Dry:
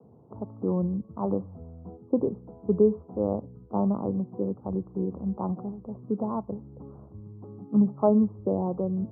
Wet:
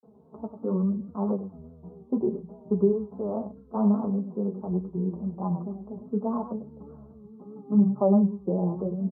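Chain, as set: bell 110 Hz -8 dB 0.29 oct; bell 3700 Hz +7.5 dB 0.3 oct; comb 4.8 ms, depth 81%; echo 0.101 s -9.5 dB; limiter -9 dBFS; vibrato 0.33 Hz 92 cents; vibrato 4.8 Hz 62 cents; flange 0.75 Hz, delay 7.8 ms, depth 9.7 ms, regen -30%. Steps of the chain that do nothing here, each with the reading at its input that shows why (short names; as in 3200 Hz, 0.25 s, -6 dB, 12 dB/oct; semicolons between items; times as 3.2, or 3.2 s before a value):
bell 3700 Hz: input band ends at 1100 Hz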